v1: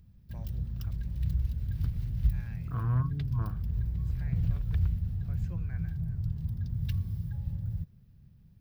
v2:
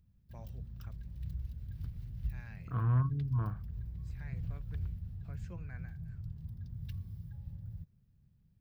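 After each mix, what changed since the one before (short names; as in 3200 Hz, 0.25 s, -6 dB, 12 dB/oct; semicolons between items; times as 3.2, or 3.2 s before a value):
background -10.5 dB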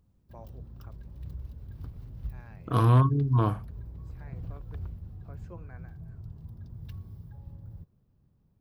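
first voice -5.0 dB; second voice: remove ladder low-pass 1700 Hz, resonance 40%; master: add band shelf 580 Hz +11.5 dB 2.6 oct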